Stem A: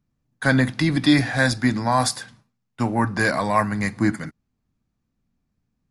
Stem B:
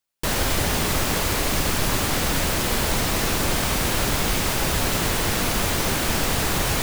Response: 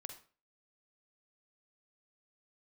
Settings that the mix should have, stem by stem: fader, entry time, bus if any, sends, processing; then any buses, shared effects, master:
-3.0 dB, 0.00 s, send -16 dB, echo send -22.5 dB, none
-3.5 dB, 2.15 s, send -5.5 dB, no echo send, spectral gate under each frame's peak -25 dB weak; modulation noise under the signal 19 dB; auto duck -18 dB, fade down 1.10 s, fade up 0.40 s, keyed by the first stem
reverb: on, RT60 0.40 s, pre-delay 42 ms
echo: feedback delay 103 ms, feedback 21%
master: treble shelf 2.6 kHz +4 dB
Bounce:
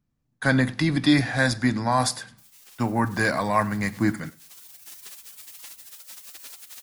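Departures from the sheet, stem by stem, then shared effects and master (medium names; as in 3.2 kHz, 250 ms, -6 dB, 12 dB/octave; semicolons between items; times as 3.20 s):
stem B -3.5 dB -> -13.5 dB; master: missing treble shelf 2.6 kHz +4 dB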